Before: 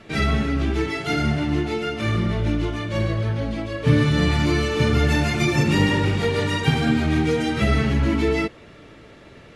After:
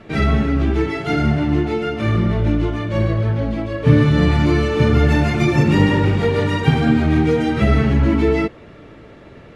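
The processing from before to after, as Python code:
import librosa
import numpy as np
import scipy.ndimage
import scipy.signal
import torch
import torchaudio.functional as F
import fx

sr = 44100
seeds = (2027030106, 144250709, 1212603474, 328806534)

y = fx.high_shelf(x, sr, hz=2600.0, db=-11.0)
y = y * librosa.db_to_amplitude(5.0)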